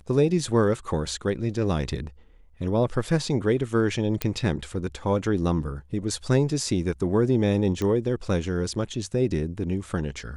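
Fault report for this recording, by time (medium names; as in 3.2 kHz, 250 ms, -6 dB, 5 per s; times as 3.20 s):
4.22 s: pop -9 dBFS
7.82 s: pop -16 dBFS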